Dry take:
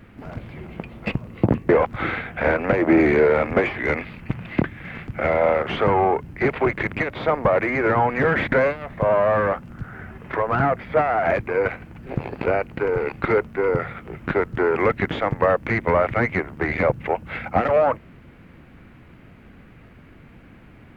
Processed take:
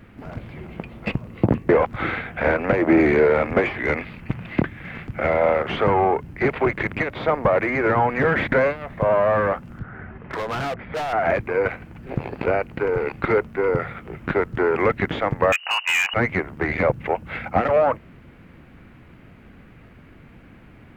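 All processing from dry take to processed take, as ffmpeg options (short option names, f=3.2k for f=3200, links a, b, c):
-filter_complex "[0:a]asettb=1/sr,asplit=3[a][b][c];[a]atrim=end=9.794[d];[b]atrim=start=9.79:end=11.13,asetpts=PTS-STARTPTS,afade=t=in:d=0.004:c=qsin,afade=t=out:st=1.336:d=0.004:c=qsin,lowpass=2.4k,volume=24dB,asoftclip=hard,volume=-24dB[e];[c]atrim=start=11.126[f];[d][e]acrossfade=d=0.004:c1=hsin:c2=qsin[g];[g][f]acrossfade=d=0.004:c1=qsin:c2=hsin,asettb=1/sr,asplit=3[h][i][j];[h]atrim=end=15.524[k];[i]atrim=start=15.52:end=16.14,asetpts=PTS-STARTPTS,afade=t=in:d=0.004:c=qsin,afade=t=out:st=0.616:d=0.004:c=qsin,lowpass=f=2.6k:t=q:w=0.5098,lowpass=f=2.6k:t=q:w=0.6013,lowpass=f=2.6k:t=q:w=0.9,lowpass=f=2.6k:t=q:w=2.563,afreqshift=-3000,highpass=650,asoftclip=type=hard:threshold=-16.5dB[l];[j]atrim=start=16.136[m];[k][l]acrossfade=d=0.004:c1=hsin:c2=qsin[n];[n][m]acrossfade=d=0.004:c1=qsin:c2=hsin"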